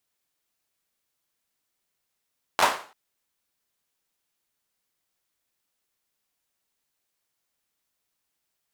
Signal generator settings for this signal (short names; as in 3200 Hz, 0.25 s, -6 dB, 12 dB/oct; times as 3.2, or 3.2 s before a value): hand clap length 0.34 s, apart 11 ms, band 880 Hz, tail 0.41 s